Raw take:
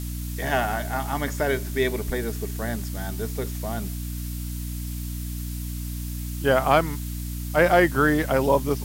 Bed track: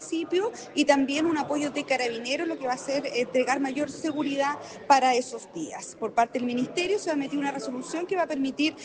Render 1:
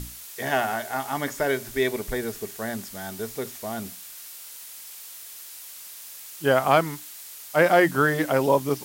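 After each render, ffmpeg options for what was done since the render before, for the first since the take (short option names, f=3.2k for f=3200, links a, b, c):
-af "bandreject=f=60:t=h:w=6,bandreject=f=120:t=h:w=6,bandreject=f=180:t=h:w=6,bandreject=f=240:t=h:w=6,bandreject=f=300:t=h:w=6"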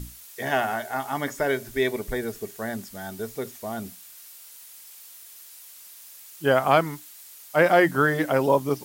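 -af "afftdn=nr=6:nf=-42"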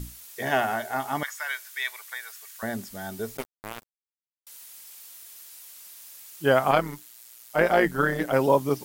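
-filter_complex "[0:a]asettb=1/sr,asplit=3[a][b][c];[a]atrim=end=1.234[d];[b]atrim=start=1.23:end=2.63,asetpts=PTS-STARTPTS,afade=t=in:d=0.004:c=qsin,afade=t=out:st=1.396:d=0.004:c=qsin,highpass=f=1.1k:w=0.5412,highpass=f=1.1k:w=1.3066[e];[c]atrim=start=2.626[f];[d][e]acrossfade=d=0.004:c1=hsin:c2=qsin[g];[g][f]acrossfade=d=0.004:c1=qsin:c2=hsin,asettb=1/sr,asplit=3[h][i][j];[h]atrim=end=3.374[k];[i]atrim=start=3.37:end=4.47,asetpts=PTS-STARTPTS,afade=t=in:d=0.004:c=qsin,afade=t=out:st=1.096:d=0.004:c=qsin,acrusher=bits=3:mix=0:aa=0.5[l];[j]atrim=start=4.466[m];[k][l]acrossfade=d=0.004:c1=hsin:c2=qsin[n];[n][m]acrossfade=d=0.004:c1=qsin:c2=hsin,asettb=1/sr,asplit=3[o][p][q];[o]atrim=end=6.714[r];[p]atrim=start=6.71:end=8.33,asetpts=PTS-STARTPTS,afade=t=in:d=0.004:c=qsin,afade=t=out:st=1.616:d=0.004:c=qsin,tremolo=f=120:d=0.667[s];[q]atrim=start=8.326[t];[r][s]acrossfade=d=0.004:c1=hsin:c2=qsin[u];[u][t]acrossfade=d=0.004:c1=qsin:c2=hsin"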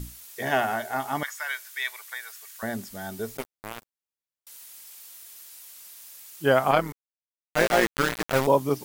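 -filter_complex "[0:a]asettb=1/sr,asplit=3[a][b][c];[a]atrim=end=6.924[d];[b]atrim=start=6.92:end=8.47,asetpts=PTS-STARTPTS,afade=t=in:d=0.004:c=qsin,afade=t=out:st=1.546:d=0.004:c=qsin,aeval=exprs='val(0)*gte(abs(val(0)),0.0891)':c=same[e];[c]atrim=start=8.466[f];[d][e]acrossfade=d=0.004:c1=hsin:c2=qsin[g];[g][f]acrossfade=d=0.004:c1=qsin:c2=hsin"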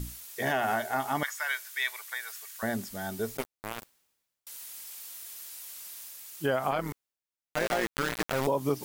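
-af "areverse,acompressor=mode=upward:threshold=-38dB:ratio=2.5,areverse,alimiter=limit=-17dB:level=0:latency=1:release=112"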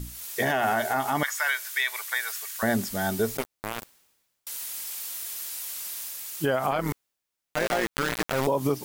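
-af "alimiter=limit=-23dB:level=0:latency=1:release=116,dynaudnorm=f=120:g=3:m=8.5dB"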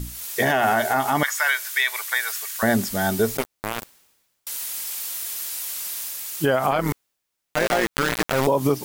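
-af "volume=5dB"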